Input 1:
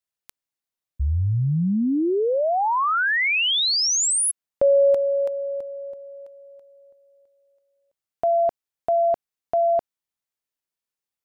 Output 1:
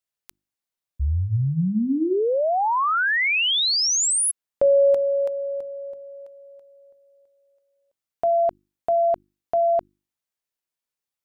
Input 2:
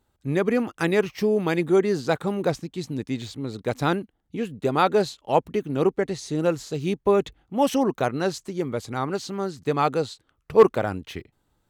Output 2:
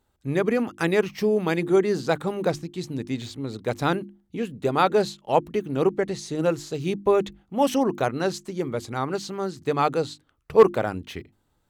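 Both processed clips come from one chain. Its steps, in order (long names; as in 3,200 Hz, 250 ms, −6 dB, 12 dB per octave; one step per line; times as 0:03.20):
mains-hum notches 50/100/150/200/250/300/350 Hz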